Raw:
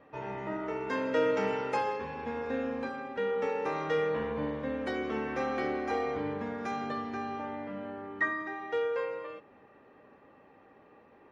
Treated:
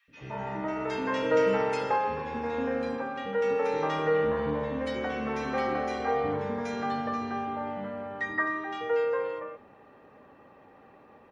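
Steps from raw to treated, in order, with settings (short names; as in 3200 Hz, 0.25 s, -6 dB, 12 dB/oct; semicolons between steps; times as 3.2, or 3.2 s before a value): three bands offset in time highs, lows, mids 80/170 ms, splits 350/2100 Hz; gain +5 dB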